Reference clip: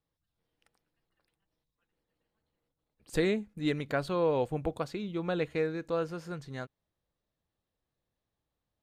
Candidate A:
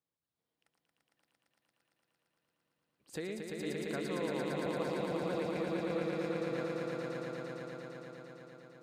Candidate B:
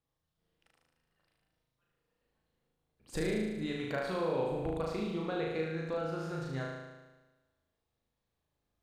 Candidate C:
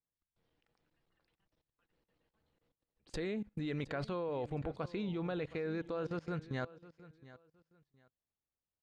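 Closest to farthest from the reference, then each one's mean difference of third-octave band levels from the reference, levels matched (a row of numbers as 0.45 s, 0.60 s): C, B, A; 4.5 dB, 7.0 dB, 10.5 dB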